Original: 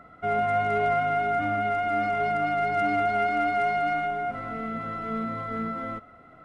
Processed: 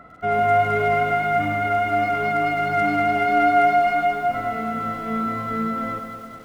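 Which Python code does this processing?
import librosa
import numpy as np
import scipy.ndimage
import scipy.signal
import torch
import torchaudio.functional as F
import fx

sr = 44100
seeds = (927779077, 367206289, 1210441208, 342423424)

y = fx.echo_feedback(x, sr, ms=213, feedback_pct=58, wet_db=-9)
y = fx.echo_crushed(y, sr, ms=98, feedback_pct=35, bits=8, wet_db=-10.0)
y = F.gain(torch.from_numpy(y), 4.5).numpy()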